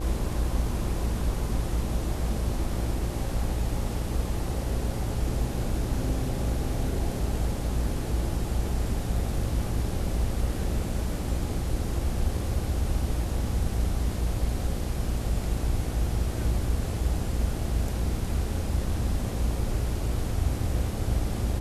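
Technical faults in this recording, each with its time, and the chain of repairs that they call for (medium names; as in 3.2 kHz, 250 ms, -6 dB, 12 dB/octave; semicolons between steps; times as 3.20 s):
buzz 60 Hz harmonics 14 -32 dBFS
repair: de-hum 60 Hz, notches 14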